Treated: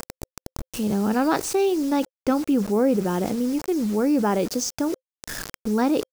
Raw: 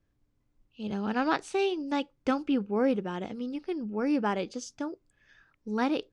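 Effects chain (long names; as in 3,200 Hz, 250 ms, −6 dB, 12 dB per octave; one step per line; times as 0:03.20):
in parallel at −1.5 dB: upward compression, threshold −31 dBFS
on the sum: bit reduction 7 bits
drawn EQ curve 520 Hz 0 dB, 3,200 Hz −9 dB, 5,400 Hz 0 dB
envelope flattener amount 50%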